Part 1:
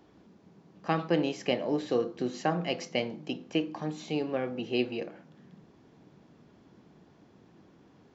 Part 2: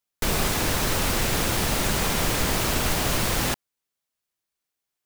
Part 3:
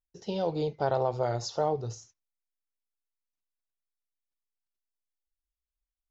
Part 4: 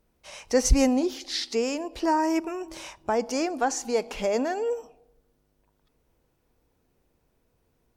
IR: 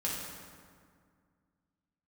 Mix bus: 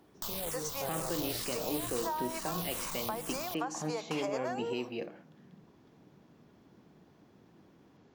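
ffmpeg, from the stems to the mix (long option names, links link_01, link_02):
-filter_complex "[0:a]volume=-8dB[link_01];[1:a]asoftclip=type=hard:threshold=-28.5dB,aexciter=amount=2.3:drive=6.5:freq=3100,asplit=2[link_02][link_03];[link_03]afreqshift=-2.2[link_04];[link_02][link_04]amix=inputs=2:normalize=1,volume=-6.5dB[link_05];[2:a]volume=-17.5dB,asplit=2[link_06][link_07];[3:a]agate=range=-7dB:threshold=-42dB:ratio=16:detection=peak,highpass=frequency=510:width=0.5412,highpass=frequency=510:width=1.3066,volume=1.5dB[link_08];[link_07]apad=whole_len=351394[link_09];[link_08][link_09]sidechaincompress=threshold=-48dB:ratio=8:attack=16:release=390[link_10];[link_05][link_10]amix=inputs=2:normalize=0,equalizer=frequency=1100:width_type=o:width=0.46:gain=9.5,acompressor=threshold=-36dB:ratio=5,volume=0dB[link_11];[link_01][link_06]amix=inputs=2:normalize=0,acontrast=34,alimiter=level_in=2dB:limit=-24dB:level=0:latency=1:release=193,volume=-2dB,volume=0dB[link_12];[link_11][link_12]amix=inputs=2:normalize=0"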